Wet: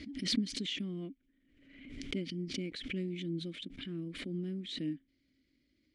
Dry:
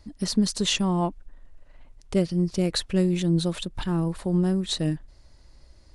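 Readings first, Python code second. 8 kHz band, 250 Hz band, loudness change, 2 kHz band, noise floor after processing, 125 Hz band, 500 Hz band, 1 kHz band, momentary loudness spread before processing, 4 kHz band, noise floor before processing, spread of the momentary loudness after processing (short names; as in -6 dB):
-15.5 dB, -13.0 dB, -13.0 dB, -7.5 dB, -76 dBFS, -16.0 dB, -15.5 dB, under -25 dB, 6 LU, -9.0 dB, -54 dBFS, 13 LU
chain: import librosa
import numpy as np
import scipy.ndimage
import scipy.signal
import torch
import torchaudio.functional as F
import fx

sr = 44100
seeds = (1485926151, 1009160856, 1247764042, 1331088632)

y = fx.vowel_filter(x, sr, vowel='i')
y = fx.pre_swell(y, sr, db_per_s=54.0)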